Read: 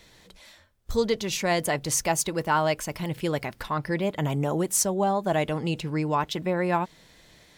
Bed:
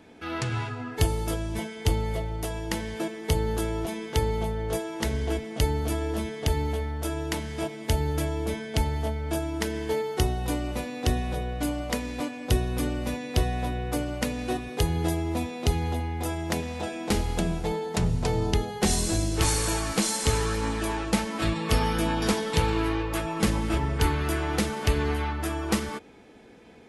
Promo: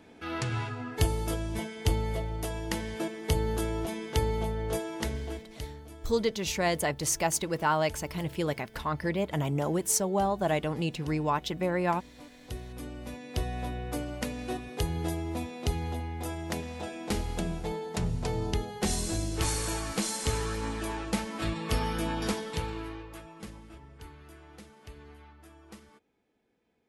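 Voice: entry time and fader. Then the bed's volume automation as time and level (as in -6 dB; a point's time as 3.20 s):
5.15 s, -3.0 dB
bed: 4.95 s -2.5 dB
5.86 s -19.5 dB
12.14 s -19.5 dB
13.61 s -5.5 dB
22.26 s -5.5 dB
23.80 s -24 dB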